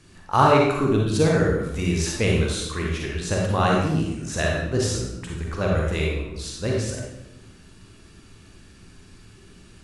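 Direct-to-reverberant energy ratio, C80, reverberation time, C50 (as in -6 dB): -2.5 dB, 3.0 dB, 0.90 s, -0.5 dB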